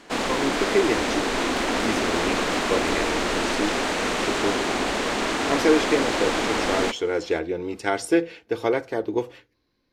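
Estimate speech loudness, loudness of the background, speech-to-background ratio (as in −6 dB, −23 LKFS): −26.5 LKFS, −24.0 LKFS, −2.5 dB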